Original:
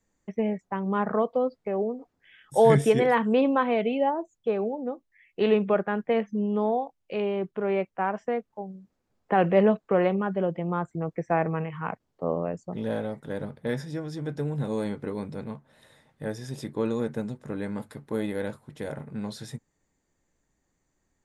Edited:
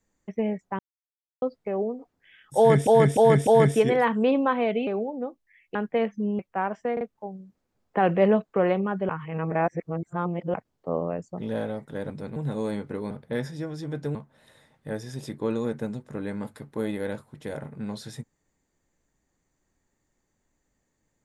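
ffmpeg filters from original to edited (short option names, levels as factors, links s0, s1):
-filter_complex "[0:a]asplit=17[s0][s1][s2][s3][s4][s5][s6][s7][s8][s9][s10][s11][s12][s13][s14][s15][s16];[s0]atrim=end=0.79,asetpts=PTS-STARTPTS,afade=t=out:st=0.786:d=0.004:c=hsin[s17];[s1]atrim=start=0.79:end=1.42,asetpts=PTS-STARTPTS,volume=0[s18];[s2]atrim=start=1.42:end=2.872,asetpts=PTS-STARTPTS,afade=t=in:d=0.004:c=hsin[s19];[s3]atrim=start=2.568:end=2.872[s20];[s4]atrim=start=2.568:end=2.872[s21];[s5]atrim=start=2.568:end=3.972[s22];[s6]atrim=start=4.518:end=5.402[s23];[s7]atrim=start=5.898:end=6.542[s24];[s8]atrim=start=7.818:end=8.402[s25];[s9]atrim=start=8.358:end=8.402[s26];[s10]atrim=start=8.358:end=10.442[s27];[s11]atrim=start=10.438:end=11.892,asetpts=PTS-STARTPTS,areverse[s28];[s12]atrim=start=11.888:end=13.452[s29];[s13]atrim=start=15.238:end=15.502[s30];[s14]atrim=start=14.488:end=15.242[s31];[s15]atrim=start=13.448:end=14.492[s32];[s16]atrim=start=15.498[s33];[s17][s18][s19]concat=n=3:v=0:a=1[s34];[s34][s20]acrossfade=d=0.004:c1=hsin:c2=hsin[s35];[s35][s21]acrossfade=d=0.004:c1=hsin:c2=hsin[s36];[s36][s22]acrossfade=d=0.004:c1=hsin:c2=hsin[s37];[s37][s23]acrossfade=d=0.004:c1=hsin:c2=hsin[s38];[s38][s24]acrossfade=d=0.004:c1=hsin:c2=hsin[s39];[s39][s25]acrossfade=d=0.004:c1=hsin:c2=hsin[s40];[s40][s26]acrossfade=d=0.004:c1=hsin:c2=hsin[s41];[s41][s27]acrossfade=d=0.004:c1=hsin:c2=hsin[s42];[s42][s28]acrossfade=d=0.004:c1=hsin:c2=hsin[s43];[s43][s29]acrossfade=d=0.004:c1=hsin:c2=hsin[s44];[s44][s30]acrossfade=d=0.004:c1=hsin:c2=hsin[s45];[s45][s31]acrossfade=d=0.004:c1=hsin:c2=hsin[s46];[s46][s32]acrossfade=d=0.004:c1=hsin:c2=hsin[s47];[s47][s33]acrossfade=d=0.004:c1=hsin:c2=hsin"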